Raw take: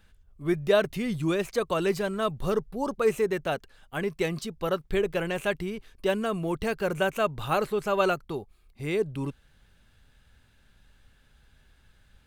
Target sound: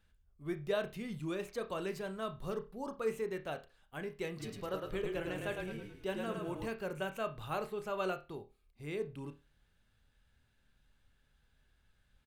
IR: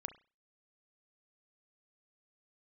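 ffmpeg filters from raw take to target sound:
-filter_complex "[0:a]asplit=3[a][b][c];[a]afade=t=out:st=4.39:d=0.02[d];[b]asplit=7[e][f][g][h][i][j][k];[f]adelay=107,afreqshift=-30,volume=-4dB[l];[g]adelay=214,afreqshift=-60,volume=-10.6dB[m];[h]adelay=321,afreqshift=-90,volume=-17.1dB[n];[i]adelay=428,afreqshift=-120,volume=-23.7dB[o];[j]adelay=535,afreqshift=-150,volume=-30.2dB[p];[k]adelay=642,afreqshift=-180,volume=-36.8dB[q];[e][l][m][n][o][p][q]amix=inputs=7:normalize=0,afade=t=in:st=4.39:d=0.02,afade=t=out:st=6.67:d=0.02[r];[c]afade=t=in:st=6.67:d=0.02[s];[d][r][s]amix=inputs=3:normalize=0[t];[1:a]atrim=start_sample=2205,asetrate=52920,aresample=44100[u];[t][u]afir=irnorm=-1:irlink=0,volume=-7dB"

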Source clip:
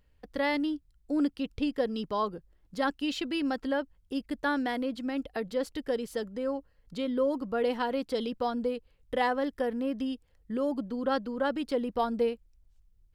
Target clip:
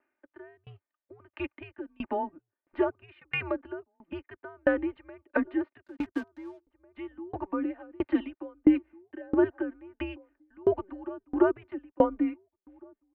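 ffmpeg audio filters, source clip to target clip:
-filter_complex "[0:a]bandreject=f=1.5k:w=20,highpass=f=560:t=q:w=0.5412,highpass=f=560:t=q:w=1.307,lowpass=f=2.4k:t=q:w=0.5176,lowpass=f=2.4k:t=q:w=0.7071,lowpass=f=2.4k:t=q:w=1.932,afreqshift=-190,acrossover=split=480[a][b];[b]acompressor=threshold=-43dB:ratio=5[c];[a][c]amix=inputs=2:normalize=0,asplit=3[d][e][f];[d]afade=t=out:st=5.83:d=0.02[g];[e]aeval=exprs='sgn(val(0))*max(abs(val(0))-0.00237,0)':c=same,afade=t=in:st=5.83:d=0.02,afade=t=out:st=6.95:d=0.02[h];[f]afade=t=in:st=6.95:d=0.02[i];[g][h][i]amix=inputs=3:normalize=0,aecho=1:1:3.3:0.63,asplit=2[j][k];[k]adelay=1749,volume=-24dB,highshelf=f=4k:g=-39.4[l];[j][l]amix=inputs=2:normalize=0,dynaudnorm=f=140:g=13:m=10dB,aeval=exprs='val(0)*pow(10,-33*if(lt(mod(1.5*n/s,1),2*abs(1.5)/1000),1-mod(1.5*n/s,1)/(2*abs(1.5)/1000),(mod(1.5*n/s,1)-2*abs(1.5)/1000)/(1-2*abs(1.5)/1000))/20)':c=same,volume=5.5dB"

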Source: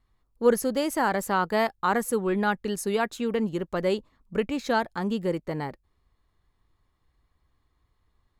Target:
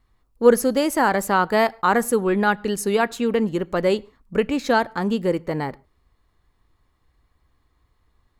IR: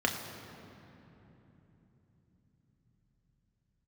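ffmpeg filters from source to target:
-filter_complex "[0:a]asplit=2[a][b];[1:a]atrim=start_sample=2205,atrim=end_sample=6615[c];[b][c]afir=irnorm=-1:irlink=0,volume=-25dB[d];[a][d]amix=inputs=2:normalize=0,volume=5dB"

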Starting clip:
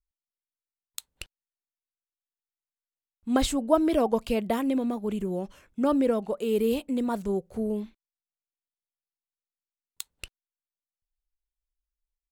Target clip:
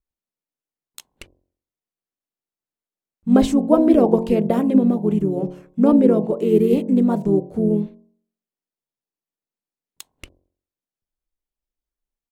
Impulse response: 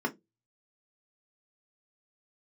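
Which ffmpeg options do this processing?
-filter_complex "[0:a]equalizer=f=270:w=0.34:g=14.5,bandreject=f=45.13:t=h:w=4,bandreject=f=90.26:t=h:w=4,bandreject=f=135.39:t=h:w=4,bandreject=f=180.52:t=h:w=4,bandreject=f=225.65:t=h:w=4,bandreject=f=270.78:t=h:w=4,bandreject=f=315.91:t=h:w=4,bandreject=f=361.04:t=h:w=4,bandreject=f=406.17:t=h:w=4,bandreject=f=451.3:t=h:w=4,bandreject=f=496.43:t=h:w=4,bandreject=f=541.56:t=h:w=4,bandreject=f=586.69:t=h:w=4,bandreject=f=631.82:t=h:w=4,bandreject=f=676.95:t=h:w=4,bandreject=f=722.08:t=h:w=4,bandreject=f=767.21:t=h:w=4,bandreject=f=812.34:t=h:w=4,bandreject=f=857.47:t=h:w=4,bandreject=f=902.6:t=h:w=4,bandreject=f=947.73:t=h:w=4,bandreject=f=992.86:t=h:w=4,bandreject=f=1.03799k:t=h:w=4,bandreject=f=1.08312k:t=h:w=4,asplit=2[a][b];[b]asetrate=35002,aresample=44100,atempo=1.25992,volume=-6dB[c];[a][c]amix=inputs=2:normalize=0,volume=-3.5dB"

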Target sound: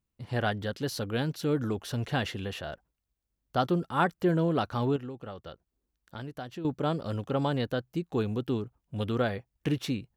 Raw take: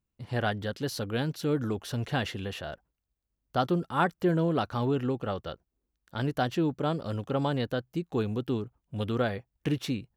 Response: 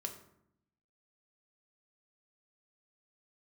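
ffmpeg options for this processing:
-filter_complex "[0:a]asettb=1/sr,asplit=3[a][b][c];[a]atrim=end=4.964[d];[b]atrim=start=4.96:end=6.65,asetpts=PTS-STARTPTS,afade=t=in:d=0.004:c=qsin,afade=t=out:st=1.686:d=0.004:c=qsin,acompressor=threshold=-42dB:ratio=2.5[e];[c]atrim=start=6.646[f];[d][e]acrossfade=d=0.004:c1=hsin:c2=qsin[g];[g][f]acrossfade=d=0.004:c1=qsin:c2=hsin"

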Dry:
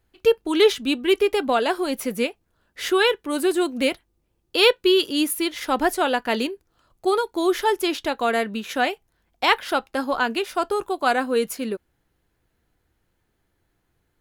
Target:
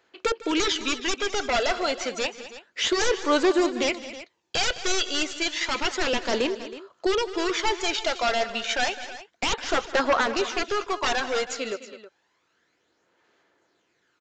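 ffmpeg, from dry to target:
-filter_complex "[0:a]highpass=470,equalizer=f=780:w=7.8:g=-5.5,asplit=2[a][b];[b]acompressor=threshold=-34dB:ratio=6,volume=1dB[c];[a][c]amix=inputs=2:normalize=0,aeval=exprs='0.112*(abs(mod(val(0)/0.112+3,4)-2)-1)':c=same,aphaser=in_gain=1:out_gain=1:delay=1.5:decay=0.48:speed=0.3:type=sinusoidal,asplit=2[d][e];[e]aecho=0:1:153|210|320:0.112|0.188|0.168[f];[d][f]amix=inputs=2:normalize=0,aresample=16000,aresample=44100"

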